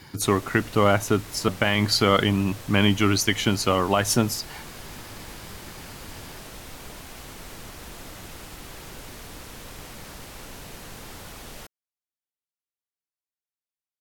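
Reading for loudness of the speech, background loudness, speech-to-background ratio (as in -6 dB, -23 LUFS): -22.0 LUFS, -40.5 LUFS, 18.5 dB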